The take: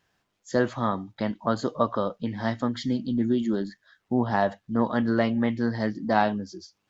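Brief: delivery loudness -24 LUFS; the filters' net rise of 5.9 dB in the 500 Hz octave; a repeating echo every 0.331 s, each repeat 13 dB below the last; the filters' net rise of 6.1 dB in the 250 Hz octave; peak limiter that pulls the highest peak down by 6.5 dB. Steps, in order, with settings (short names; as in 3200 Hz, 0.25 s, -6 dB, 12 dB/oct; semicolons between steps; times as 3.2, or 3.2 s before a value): bell 250 Hz +5.5 dB; bell 500 Hz +6 dB; limiter -11 dBFS; feedback echo 0.331 s, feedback 22%, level -13 dB; gain -1 dB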